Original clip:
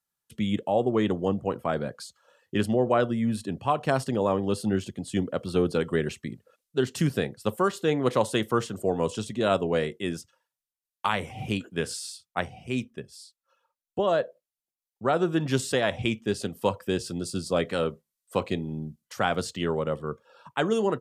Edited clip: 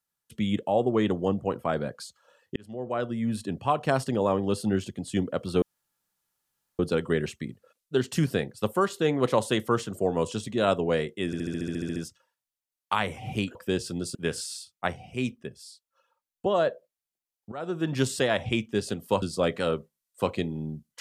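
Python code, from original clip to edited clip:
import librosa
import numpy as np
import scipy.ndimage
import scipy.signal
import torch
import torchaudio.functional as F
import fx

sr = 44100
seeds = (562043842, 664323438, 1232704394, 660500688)

y = fx.edit(x, sr, fx.fade_in_span(start_s=2.56, length_s=0.89),
    fx.insert_room_tone(at_s=5.62, length_s=1.17),
    fx.stutter(start_s=10.09, slice_s=0.07, count=11),
    fx.fade_in_from(start_s=15.05, length_s=0.46, floor_db=-19.0),
    fx.move(start_s=16.75, length_s=0.6, to_s=11.68), tone=tone)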